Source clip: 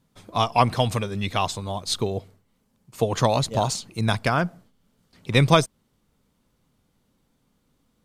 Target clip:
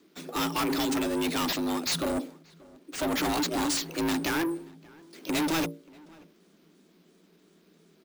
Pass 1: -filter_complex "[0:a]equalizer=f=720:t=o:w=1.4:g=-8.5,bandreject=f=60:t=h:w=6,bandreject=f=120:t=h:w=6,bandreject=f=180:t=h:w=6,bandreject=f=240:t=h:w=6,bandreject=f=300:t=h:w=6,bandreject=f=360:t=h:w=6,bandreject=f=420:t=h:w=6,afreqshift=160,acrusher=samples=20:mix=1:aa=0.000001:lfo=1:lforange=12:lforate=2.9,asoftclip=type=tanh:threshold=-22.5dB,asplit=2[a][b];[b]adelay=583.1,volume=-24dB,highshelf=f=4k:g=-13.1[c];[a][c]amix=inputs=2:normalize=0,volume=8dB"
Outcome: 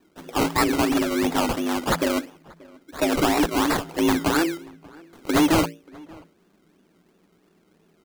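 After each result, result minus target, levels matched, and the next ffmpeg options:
decimation with a swept rate: distortion +10 dB; soft clip: distortion -5 dB
-filter_complex "[0:a]equalizer=f=720:t=o:w=1.4:g=-8.5,bandreject=f=60:t=h:w=6,bandreject=f=120:t=h:w=6,bandreject=f=180:t=h:w=6,bandreject=f=240:t=h:w=6,bandreject=f=300:t=h:w=6,bandreject=f=360:t=h:w=6,bandreject=f=420:t=h:w=6,afreqshift=160,acrusher=samples=4:mix=1:aa=0.000001:lfo=1:lforange=2.4:lforate=2.9,asoftclip=type=tanh:threshold=-22.5dB,asplit=2[a][b];[b]adelay=583.1,volume=-24dB,highshelf=f=4k:g=-13.1[c];[a][c]amix=inputs=2:normalize=0,volume=8dB"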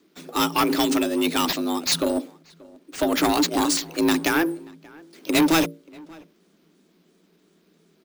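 soft clip: distortion -6 dB
-filter_complex "[0:a]equalizer=f=720:t=o:w=1.4:g=-8.5,bandreject=f=60:t=h:w=6,bandreject=f=120:t=h:w=6,bandreject=f=180:t=h:w=6,bandreject=f=240:t=h:w=6,bandreject=f=300:t=h:w=6,bandreject=f=360:t=h:w=6,bandreject=f=420:t=h:w=6,afreqshift=160,acrusher=samples=4:mix=1:aa=0.000001:lfo=1:lforange=2.4:lforate=2.9,asoftclip=type=tanh:threshold=-33.5dB,asplit=2[a][b];[b]adelay=583.1,volume=-24dB,highshelf=f=4k:g=-13.1[c];[a][c]amix=inputs=2:normalize=0,volume=8dB"

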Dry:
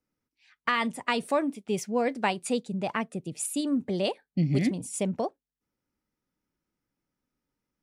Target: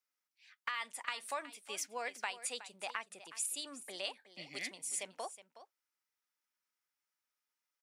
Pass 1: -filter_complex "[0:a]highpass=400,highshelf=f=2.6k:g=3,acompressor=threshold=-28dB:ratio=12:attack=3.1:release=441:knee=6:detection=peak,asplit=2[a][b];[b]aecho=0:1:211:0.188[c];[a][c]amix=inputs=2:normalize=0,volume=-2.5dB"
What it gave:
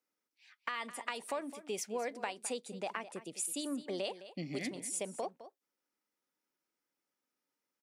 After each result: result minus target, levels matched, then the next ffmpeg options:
echo 0.157 s early; 500 Hz band +6.5 dB
-filter_complex "[0:a]highpass=400,highshelf=f=2.6k:g=3,acompressor=threshold=-28dB:ratio=12:attack=3.1:release=441:knee=6:detection=peak,asplit=2[a][b];[b]aecho=0:1:368:0.188[c];[a][c]amix=inputs=2:normalize=0,volume=-2.5dB"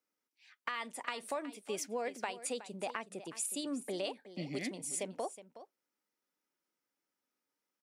500 Hz band +6.5 dB
-filter_complex "[0:a]highpass=1.1k,highshelf=f=2.6k:g=3,acompressor=threshold=-28dB:ratio=12:attack=3.1:release=441:knee=6:detection=peak,asplit=2[a][b];[b]aecho=0:1:368:0.188[c];[a][c]amix=inputs=2:normalize=0,volume=-2.5dB"

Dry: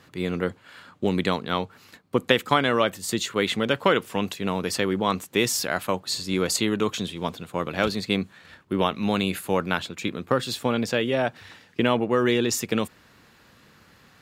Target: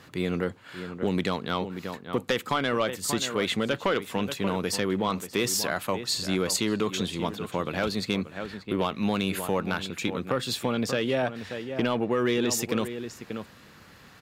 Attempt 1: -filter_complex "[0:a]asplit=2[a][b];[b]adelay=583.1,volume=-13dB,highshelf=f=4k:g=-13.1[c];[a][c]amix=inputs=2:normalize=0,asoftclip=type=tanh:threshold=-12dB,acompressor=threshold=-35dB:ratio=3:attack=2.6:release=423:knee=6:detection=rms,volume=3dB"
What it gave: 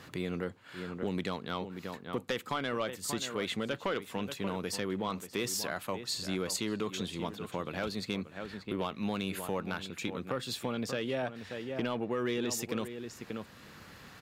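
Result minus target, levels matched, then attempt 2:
compressor: peak gain reduction +7.5 dB
-filter_complex "[0:a]asplit=2[a][b];[b]adelay=583.1,volume=-13dB,highshelf=f=4k:g=-13.1[c];[a][c]amix=inputs=2:normalize=0,asoftclip=type=tanh:threshold=-12dB,acompressor=threshold=-23.5dB:ratio=3:attack=2.6:release=423:knee=6:detection=rms,volume=3dB"

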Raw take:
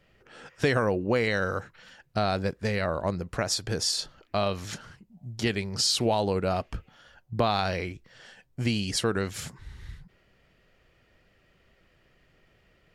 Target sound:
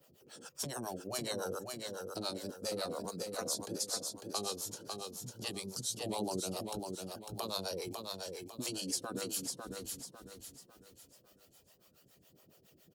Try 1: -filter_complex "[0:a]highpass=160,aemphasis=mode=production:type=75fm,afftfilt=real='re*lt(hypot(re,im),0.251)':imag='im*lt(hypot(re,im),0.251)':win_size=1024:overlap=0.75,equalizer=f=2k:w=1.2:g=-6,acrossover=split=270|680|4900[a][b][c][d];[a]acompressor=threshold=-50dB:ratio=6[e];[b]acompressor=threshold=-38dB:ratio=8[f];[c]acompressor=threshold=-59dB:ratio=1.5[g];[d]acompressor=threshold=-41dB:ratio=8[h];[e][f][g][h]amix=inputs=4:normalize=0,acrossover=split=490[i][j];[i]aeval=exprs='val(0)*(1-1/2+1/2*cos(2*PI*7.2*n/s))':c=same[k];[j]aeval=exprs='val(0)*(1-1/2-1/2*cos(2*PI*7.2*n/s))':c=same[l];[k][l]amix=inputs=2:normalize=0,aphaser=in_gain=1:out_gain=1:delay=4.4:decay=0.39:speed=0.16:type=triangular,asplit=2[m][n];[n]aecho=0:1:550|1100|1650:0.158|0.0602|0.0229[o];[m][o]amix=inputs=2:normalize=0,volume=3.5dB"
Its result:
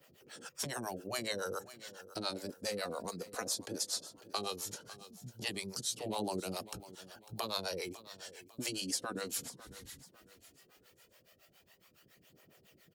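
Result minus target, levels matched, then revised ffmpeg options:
echo-to-direct -11.5 dB; 2000 Hz band +5.0 dB
-filter_complex "[0:a]highpass=160,aemphasis=mode=production:type=75fm,afftfilt=real='re*lt(hypot(re,im),0.251)':imag='im*lt(hypot(re,im),0.251)':win_size=1024:overlap=0.75,equalizer=f=2k:w=1.2:g=-16.5,acrossover=split=270|680|4900[a][b][c][d];[a]acompressor=threshold=-50dB:ratio=6[e];[b]acompressor=threshold=-38dB:ratio=8[f];[c]acompressor=threshold=-59dB:ratio=1.5[g];[d]acompressor=threshold=-41dB:ratio=8[h];[e][f][g][h]amix=inputs=4:normalize=0,acrossover=split=490[i][j];[i]aeval=exprs='val(0)*(1-1/2+1/2*cos(2*PI*7.2*n/s))':c=same[k];[j]aeval=exprs='val(0)*(1-1/2-1/2*cos(2*PI*7.2*n/s))':c=same[l];[k][l]amix=inputs=2:normalize=0,aphaser=in_gain=1:out_gain=1:delay=4.4:decay=0.39:speed=0.16:type=triangular,asplit=2[m][n];[n]aecho=0:1:550|1100|1650|2200|2750:0.596|0.226|0.086|0.0327|0.0124[o];[m][o]amix=inputs=2:normalize=0,volume=3.5dB"

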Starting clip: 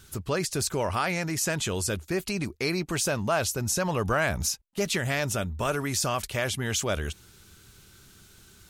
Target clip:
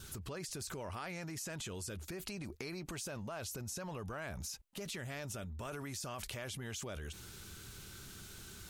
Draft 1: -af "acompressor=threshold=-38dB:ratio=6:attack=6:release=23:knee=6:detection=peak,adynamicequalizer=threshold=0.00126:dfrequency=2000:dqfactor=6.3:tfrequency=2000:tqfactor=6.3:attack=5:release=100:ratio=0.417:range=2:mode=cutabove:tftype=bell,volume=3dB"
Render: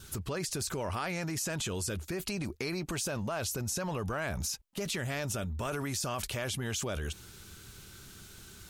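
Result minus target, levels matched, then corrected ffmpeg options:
compressor: peak gain reduction -9 dB
-af "acompressor=threshold=-48.5dB:ratio=6:attack=6:release=23:knee=6:detection=peak,adynamicequalizer=threshold=0.00126:dfrequency=2000:dqfactor=6.3:tfrequency=2000:tqfactor=6.3:attack=5:release=100:ratio=0.417:range=2:mode=cutabove:tftype=bell,volume=3dB"

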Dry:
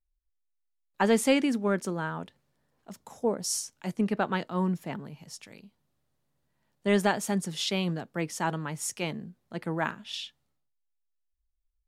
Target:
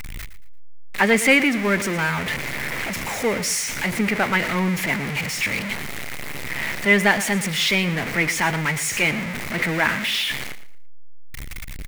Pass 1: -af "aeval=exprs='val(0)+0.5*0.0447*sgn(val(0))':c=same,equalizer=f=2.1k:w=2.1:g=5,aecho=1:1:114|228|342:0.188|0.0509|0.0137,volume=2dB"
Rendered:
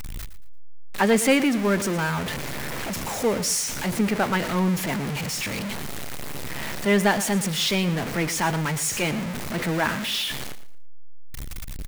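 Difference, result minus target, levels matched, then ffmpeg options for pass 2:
2000 Hz band -5.0 dB
-af "aeval=exprs='val(0)+0.5*0.0447*sgn(val(0))':c=same,equalizer=f=2.1k:w=2.1:g=16.5,aecho=1:1:114|228|342:0.188|0.0509|0.0137,volume=2dB"

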